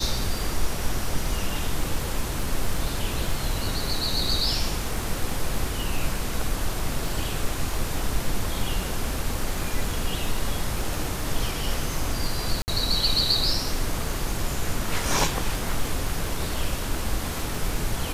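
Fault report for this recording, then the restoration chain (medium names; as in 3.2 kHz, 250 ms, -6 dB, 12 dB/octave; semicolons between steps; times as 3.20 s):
crackle 28 per s -30 dBFS
12.62–12.68 s: dropout 59 ms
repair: de-click; interpolate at 12.62 s, 59 ms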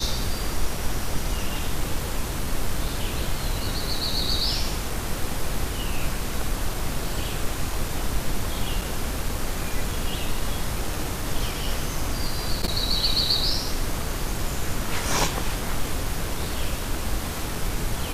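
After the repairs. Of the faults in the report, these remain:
nothing left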